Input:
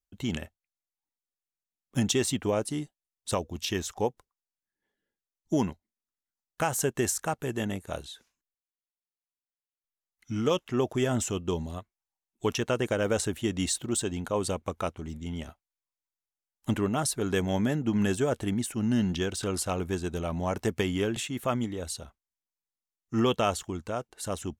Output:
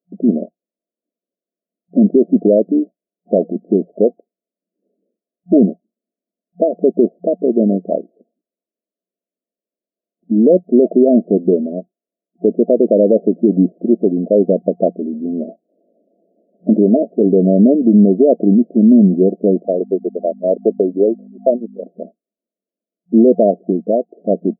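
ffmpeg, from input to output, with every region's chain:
-filter_complex "[0:a]asettb=1/sr,asplit=3[a][b][c];[a]atrim=end=15.324[d];[b]atrim=start=15.32:end=17.37,asetpts=PTS-STARTPTS,afade=t=in:d=0.004:c=qsin,afade=t=out:st=2.046:d=0.004:c=qsin,asplit=2[e][f];[f]adelay=18,volume=-13.5dB[g];[e][g]amix=inputs=2:normalize=0,atrim=end_sample=90405,acompressor=mode=upward:threshold=-36dB:ratio=2.5:attack=3.2:release=140:knee=2.83:detection=peak[h];[c]atrim=start=17.366[i];[d][h]acrossfade=d=0.004:c1=hsin:c2=qsin[j];[j][i]acrossfade=d=0.004:c1=qsin:c2=hsin,asettb=1/sr,asplit=3[k][l][m];[k]atrim=end=19.654[n];[l]atrim=start=19.65:end=21.86,asetpts=PTS-STARTPTS,afade=t=in:d=0.004:c=qsin,afade=t=out:st=2.206:d=0.004:c=qsin,highpass=370,agate=range=-43dB:threshold=-36dB:ratio=16:release=100:detection=peak,aeval=exprs='val(0)+0.00562*(sin(2*PI*50*n/s)+sin(2*PI*2*50*n/s)/2+sin(2*PI*3*50*n/s)/3+sin(2*PI*4*50*n/s)/4+sin(2*PI*5*50*n/s)/5)':c=same[o];[m]atrim=start=21.856[p];[n][o]acrossfade=d=0.004:c1=hsin:c2=qsin[q];[q][p]acrossfade=d=0.004:c1=qsin:c2=hsin,afftfilt=real='re*between(b*sr/4096,180,700)':imag='im*between(b*sr/4096,180,700)':win_size=4096:overlap=0.75,aemphasis=mode=reproduction:type=cd,alimiter=level_in=20dB:limit=-1dB:release=50:level=0:latency=1,volume=-1dB"

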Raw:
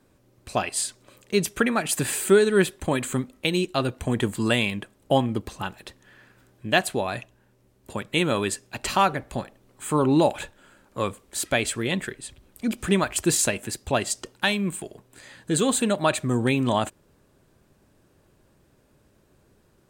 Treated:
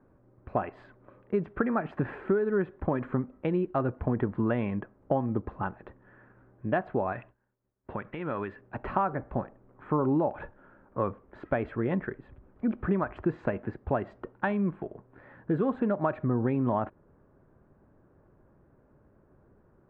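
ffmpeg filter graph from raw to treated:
-filter_complex "[0:a]asettb=1/sr,asplit=3[a][b][c];[a]atrim=end=7.124[d];[b]atrim=start=7.12:end=8.61,asetpts=PTS-STARTPTS,afade=t=in:d=0.004:c=qsin,afade=t=out:st=1.486:d=0.004:c=qsin,equalizer=f=2.6k:t=o:w=2.3:g=10,agate=range=-33dB:threshold=-49dB:ratio=3:release=100:detection=peak,acompressor=threshold=-31dB:ratio=2.5:attack=3.2:release=140:knee=1:detection=peak[e];[c]atrim=start=8.606[f];[d][e]acrossfade=d=0.004:c1=hsin:c2=qsin[g];[g][f]acrossfade=d=0.004:c1=qsin:c2=hsin,lowpass=f=1.5k:w=0.5412,lowpass=f=1.5k:w=1.3066,acompressor=threshold=-23dB:ratio=6"

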